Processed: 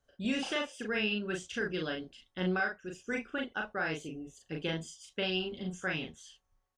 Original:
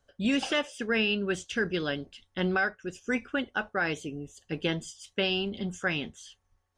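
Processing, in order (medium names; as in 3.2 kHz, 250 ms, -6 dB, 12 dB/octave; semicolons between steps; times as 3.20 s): doubling 38 ms -3 dB; trim -6.5 dB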